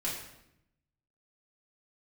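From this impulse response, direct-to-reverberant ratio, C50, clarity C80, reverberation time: −7.0 dB, 3.5 dB, 6.0 dB, 0.80 s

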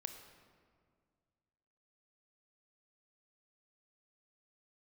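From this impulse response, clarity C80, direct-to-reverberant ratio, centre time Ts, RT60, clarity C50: 8.5 dB, 6.0 dB, 29 ms, 2.0 s, 7.5 dB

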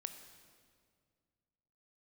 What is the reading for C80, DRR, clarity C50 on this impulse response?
10.0 dB, 8.0 dB, 9.0 dB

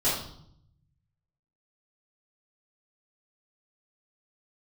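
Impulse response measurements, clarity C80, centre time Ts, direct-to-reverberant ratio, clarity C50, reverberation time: 6.0 dB, 50 ms, −11.5 dB, 2.0 dB, 0.70 s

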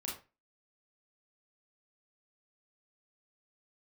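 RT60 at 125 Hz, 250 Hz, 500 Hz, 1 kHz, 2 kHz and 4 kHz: 0.35, 0.30, 0.30, 0.30, 0.30, 0.25 seconds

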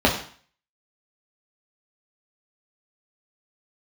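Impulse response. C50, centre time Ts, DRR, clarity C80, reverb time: 8.0 dB, 23 ms, −2.5 dB, 11.0 dB, 0.45 s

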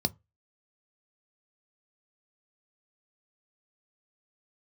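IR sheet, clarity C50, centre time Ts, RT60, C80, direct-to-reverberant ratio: 28.0 dB, 3 ms, non-exponential decay, 36.0 dB, 11.5 dB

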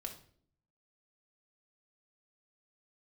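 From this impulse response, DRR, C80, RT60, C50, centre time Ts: 2.5 dB, 14.5 dB, 0.55 s, 9.5 dB, 13 ms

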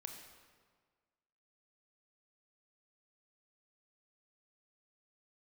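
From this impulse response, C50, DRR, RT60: 5.0 dB, 3.5 dB, 1.6 s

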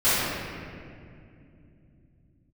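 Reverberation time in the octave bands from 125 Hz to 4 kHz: 5.2 s, can't be measured, 3.0 s, 2.0 s, 2.1 s, 1.4 s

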